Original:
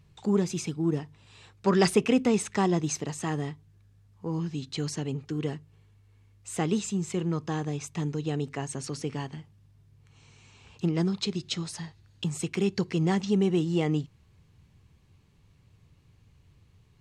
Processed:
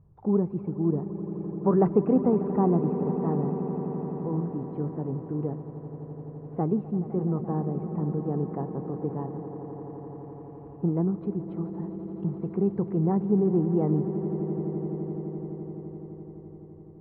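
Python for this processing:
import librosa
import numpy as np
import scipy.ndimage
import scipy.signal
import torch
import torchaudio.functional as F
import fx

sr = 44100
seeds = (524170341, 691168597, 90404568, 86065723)

y = scipy.signal.sosfilt(scipy.signal.butter(4, 1000.0, 'lowpass', fs=sr, output='sos'), x)
y = fx.echo_swell(y, sr, ms=85, loudest=8, wet_db=-16.5)
y = y * 10.0 ** (1.0 / 20.0)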